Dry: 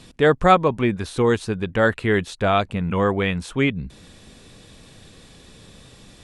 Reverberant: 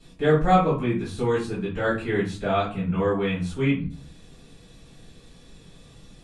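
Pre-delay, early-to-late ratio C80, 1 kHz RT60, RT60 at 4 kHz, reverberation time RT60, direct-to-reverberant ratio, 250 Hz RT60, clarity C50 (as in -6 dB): 3 ms, 12.0 dB, 0.40 s, 0.30 s, 0.40 s, -11.5 dB, 0.60 s, 6.0 dB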